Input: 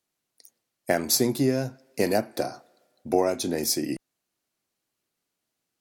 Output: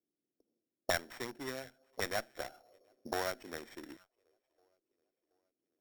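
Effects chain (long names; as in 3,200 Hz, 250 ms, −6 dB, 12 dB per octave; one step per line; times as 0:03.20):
adaptive Wiener filter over 41 samples
parametric band 890 Hz +5 dB 2.7 octaves
soft clipping −10 dBFS, distortion −17 dB
delay with a high-pass on its return 727 ms, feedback 54%, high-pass 4,200 Hz, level −8.5 dB
envelope filter 310–1,900 Hz, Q 2.3, up, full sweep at −25.5 dBFS
bad sample-rate conversion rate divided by 8×, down filtered, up hold
windowed peak hold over 5 samples
level +1 dB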